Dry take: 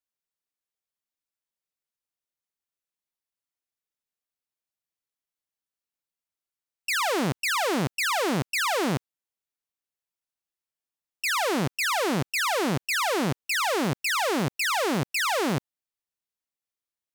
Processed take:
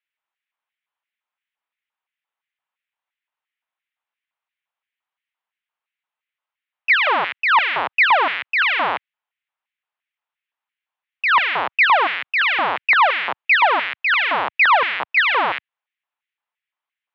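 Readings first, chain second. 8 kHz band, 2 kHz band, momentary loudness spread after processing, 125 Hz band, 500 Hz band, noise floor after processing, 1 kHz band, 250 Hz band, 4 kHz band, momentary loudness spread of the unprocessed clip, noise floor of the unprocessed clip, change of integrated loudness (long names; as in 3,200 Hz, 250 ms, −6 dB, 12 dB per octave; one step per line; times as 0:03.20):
below −25 dB, +12.0 dB, 6 LU, below −15 dB, +1.0 dB, below −85 dBFS, +11.0 dB, −11.5 dB, +5.5 dB, 3 LU, below −85 dBFS, +9.0 dB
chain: auto-filter high-pass square 2.9 Hz 1,000–2,100 Hz
single-sideband voice off tune −92 Hz 180–3,400 Hz
level +8 dB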